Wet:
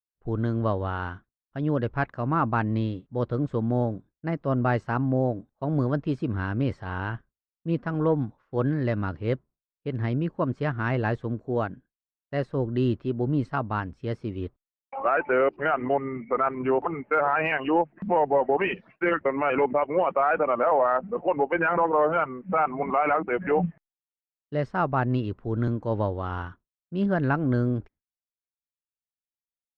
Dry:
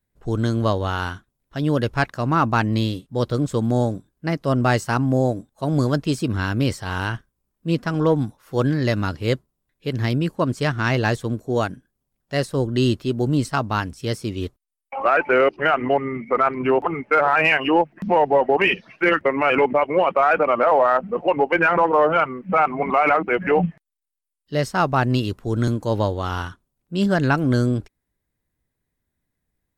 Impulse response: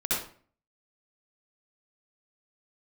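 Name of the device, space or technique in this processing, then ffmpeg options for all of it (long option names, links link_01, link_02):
hearing-loss simulation: -af "lowpass=1800,agate=range=-33dB:threshold=-40dB:ratio=3:detection=peak,volume=-5dB"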